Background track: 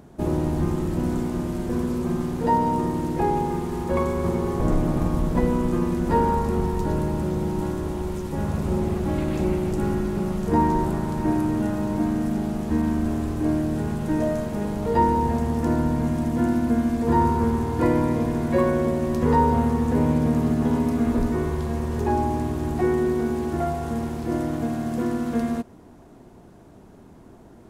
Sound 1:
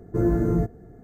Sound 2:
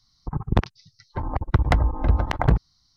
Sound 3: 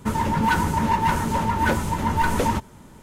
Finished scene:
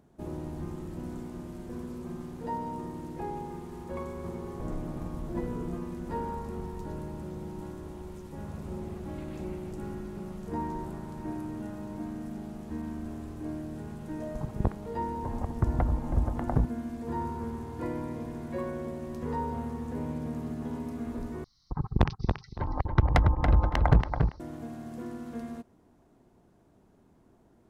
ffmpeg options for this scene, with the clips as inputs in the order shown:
-filter_complex "[2:a]asplit=2[a][b];[0:a]volume=-14dB[c];[1:a]asplit=2[d][e];[e]adelay=4.6,afreqshift=2.3[f];[d][f]amix=inputs=2:normalize=1[g];[a]lowpass=1k[h];[b]asplit=2[i][j];[j]adelay=281,lowpass=f=3.2k:p=1,volume=-4.5dB,asplit=2[k][l];[l]adelay=281,lowpass=f=3.2k:p=1,volume=0.21,asplit=2[m][n];[n]adelay=281,lowpass=f=3.2k:p=1,volume=0.21[o];[i][k][m][o]amix=inputs=4:normalize=0[p];[c]asplit=2[q][r];[q]atrim=end=21.444[s];[p]atrim=end=2.96,asetpts=PTS-STARTPTS,volume=-3.5dB[t];[r]atrim=start=24.396[u];[g]atrim=end=1.03,asetpts=PTS-STARTPTS,volume=-15dB,afade=t=in:d=0.004:c=hsin,afade=t=out:st=1.026:d=0.004:c=hsin,adelay=5110[v];[h]atrim=end=2.96,asetpts=PTS-STARTPTS,volume=-7.5dB,afade=t=in:d=0.004:c=hsin,afade=t=out:st=2.956:d=0.004:c=hsin,adelay=14080[w];[s][t]acrossfade=d=0.004:c1=hsin:c2=hsin[x];[x][u]acrossfade=d=0.004:c1=hsin:c2=hsin[y];[y][v][w]amix=inputs=3:normalize=0"

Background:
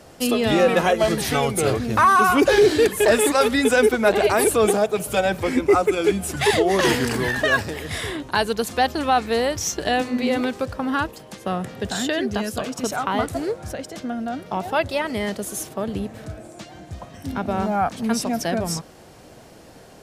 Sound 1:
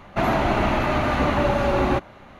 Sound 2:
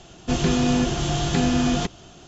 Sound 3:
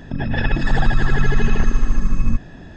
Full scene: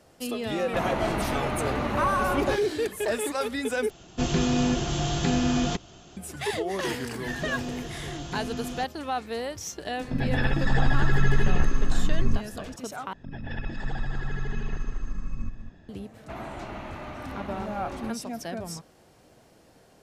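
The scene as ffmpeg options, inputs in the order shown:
-filter_complex "[1:a]asplit=2[a][b];[2:a]asplit=2[c][d];[3:a]asplit=2[e][f];[0:a]volume=-11dB[g];[e]asplit=2[h][i];[i]adelay=15,volume=-4dB[j];[h][j]amix=inputs=2:normalize=0[k];[f]asplit=2[l][m];[m]adelay=198.3,volume=-9dB,highshelf=f=4k:g=-4.46[n];[l][n]amix=inputs=2:normalize=0[o];[g]asplit=3[p][q][r];[p]atrim=end=3.904[s];[c]atrim=end=2.27,asetpts=PTS-STARTPTS,volume=-3.5dB[t];[q]atrim=start=6.166:end=13.134[u];[o]atrim=end=2.76,asetpts=PTS-STARTPTS,volume=-15dB[v];[r]atrim=start=15.886[w];[a]atrim=end=2.39,asetpts=PTS-STARTPTS,volume=-8dB,afade=t=in:d=0.004:c=hsin,afade=t=out:st=2.386:d=0.004:c=hsin,adelay=570[x];[d]atrim=end=2.27,asetpts=PTS-STARTPTS,volume=-14dB,afade=t=in:d=0.004:c=hsin,afade=t=out:st=2.266:d=0.004:c=hsin,adelay=307818S[y];[k]atrim=end=2.76,asetpts=PTS-STARTPTS,volume=-6dB,afade=t=in:d=0.004:c=hsin,afade=t=out:st=2.756:d=0.004:c=hsin,adelay=10000[z];[b]atrim=end=2.39,asetpts=PTS-STARTPTS,volume=-17dB,afade=t=in:d=0.004:c=hsin,afade=t=out:st=2.386:d=0.004:c=hsin,adelay=16120[aa];[s][t]acrossfade=d=0.004:c1=hsin:c2=hsin[ab];[ab][u]acrossfade=d=0.004:c1=hsin:c2=hsin[ac];[ac][v]acrossfade=d=0.004:c1=hsin:c2=hsin[ad];[ad][w]acrossfade=d=0.004:c1=hsin:c2=hsin[ae];[ae][x][y][z][aa]amix=inputs=5:normalize=0"

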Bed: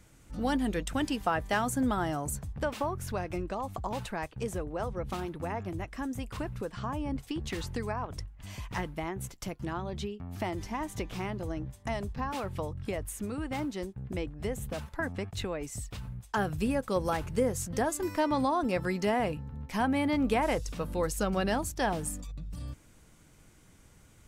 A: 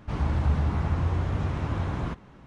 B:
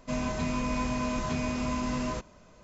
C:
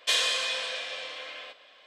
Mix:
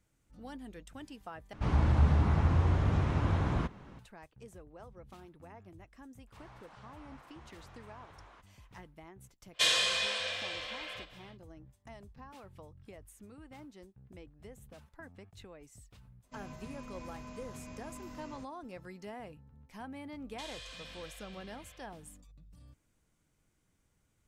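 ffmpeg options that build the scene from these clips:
-filter_complex "[1:a]asplit=2[a][b];[3:a]asplit=2[c][d];[0:a]volume=-17dB[e];[b]highpass=680[f];[d]acompressor=threshold=-34dB:ratio=2.5:attack=76:release=41:knee=1:detection=rms[g];[e]asplit=2[h][i];[h]atrim=end=1.534[j];[a]atrim=end=2.46,asetpts=PTS-STARTPTS,volume=-1dB[k];[i]atrim=start=3.986[l];[f]atrim=end=2.46,asetpts=PTS-STARTPTS,volume=-17.5dB,afade=t=in:d=0.004:c=hsin,afade=t=out:st=2.456:d=0.004:c=hsin,adelay=6270[m];[c]atrim=end=1.86,asetpts=PTS-STARTPTS,volume=-2dB,afade=t=in:d=0.1,afade=t=out:st=1.76:d=0.1,adelay=9520[n];[2:a]atrim=end=2.63,asetpts=PTS-STARTPTS,volume=-17.5dB,afade=t=in:d=0.004:c=hsin,afade=t=out:st=2.626:d=0.004:c=hsin,adelay=16240[o];[g]atrim=end=1.86,asetpts=PTS-STARTPTS,volume=-17.5dB,afade=t=in:d=0.004:c=hsin,afade=t=out:st=1.856:d=0.004:c=hsin,adelay=20310[p];[j][k]acrossfade=d=0.004:c1=hsin:c2=hsin[q];[q][l]acrossfade=d=0.004:c1=hsin:c2=hsin[r];[r][m][n][o][p]amix=inputs=5:normalize=0"

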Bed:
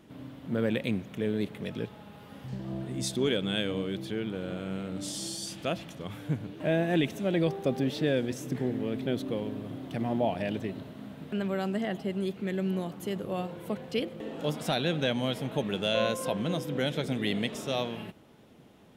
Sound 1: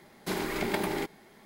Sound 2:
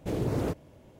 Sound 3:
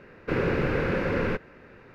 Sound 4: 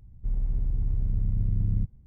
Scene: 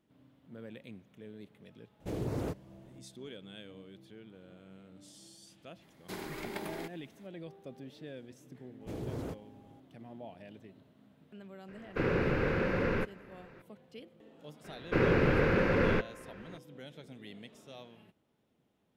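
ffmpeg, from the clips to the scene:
-filter_complex "[2:a]asplit=2[a][b];[3:a]asplit=2[c][d];[0:a]volume=-19dB[e];[b]aeval=exprs='val(0)+0.00224*sin(2*PI*810*n/s)':c=same[f];[a]atrim=end=0.99,asetpts=PTS-STARTPTS,volume=-6dB,afade=t=in:d=0.004:c=hsin,afade=t=out:st=0.986:d=0.004:c=hsin,adelay=2000[g];[1:a]atrim=end=1.45,asetpts=PTS-STARTPTS,volume=-10dB,afade=t=in:d=0.004:c=hsin,afade=t=out:st=1.446:d=0.004:c=hsin,adelay=5820[h];[f]atrim=end=0.99,asetpts=PTS-STARTPTS,volume=-10dB,afade=t=in:d=0.004:c=hsin,afade=t=out:st=0.986:d=0.004:c=hsin,adelay=8810[i];[c]atrim=end=1.94,asetpts=PTS-STARTPTS,volume=-4.5dB,afade=t=in:d=0.004:c=hsin,afade=t=out:st=1.936:d=0.004:c=hsin,adelay=11680[j];[d]atrim=end=1.94,asetpts=PTS-STARTPTS,volume=-1dB,afade=t=in:d=0.004:c=hsin,afade=t=out:st=1.936:d=0.004:c=hsin,adelay=14640[k];[e][g][h][i][j][k]amix=inputs=6:normalize=0"

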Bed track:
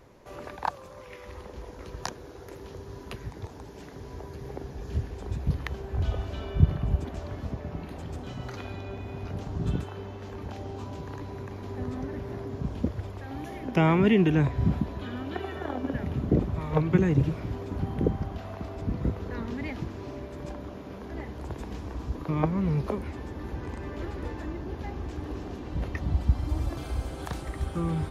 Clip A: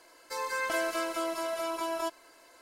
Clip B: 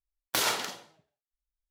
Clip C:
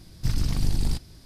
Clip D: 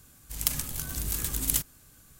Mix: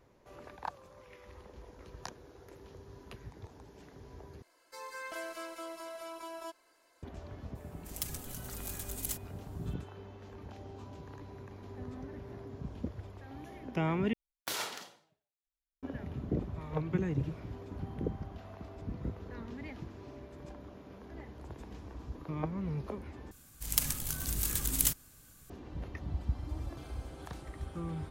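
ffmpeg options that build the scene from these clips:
-filter_complex "[4:a]asplit=2[a][b];[0:a]volume=-10dB[c];[a]aecho=1:1:4.8:0.76[d];[c]asplit=4[e][f][g][h];[e]atrim=end=4.424[i];[1:a]atrim=end=2.61,asetpts=PTS-STARTPTS,volume=-11dB[j];[f]atrim=start=7.026:end=14.134[k];[2:a]atrim=end=1.7,asetpts=PTS-STARTPTS,volume=-9.5dB[l];[g]atrim=start=15.826:end=23.314[m];[b]atrim=end=2.19,asetpts=PTS-STARTPTS,volume=-2dB[n];[h]atrim=start=25.496[o];[d]atrim=end=2.19,asetpts=PTS-STARTPTS,volume=-13dB,afade=t=in:d=0.004:c=hsin,afade=t=out:st=2.186:d=0.004:c=hsin,adelay=7550[p];[i][j]acrossfade=d=0.004:c1=hsin:c2=hsin[q];[q][k]acrossfade=d=0.004:c1=hsin:c2=hsin[r];[r][l]acrossfade=d=0.004:c1=hsin:c2=hsin[s];[s][m]acrossfade=d=0.004:c1=hsin:c2=hsin[t];[t][n]acrossfade=d=0.004:c1=hsin:c2=hsin[u];[u][o]acrossfade=d=0.004:c1=hsin:c2=hsin[v];[v][p]amix=inputs=2:normalize=0"

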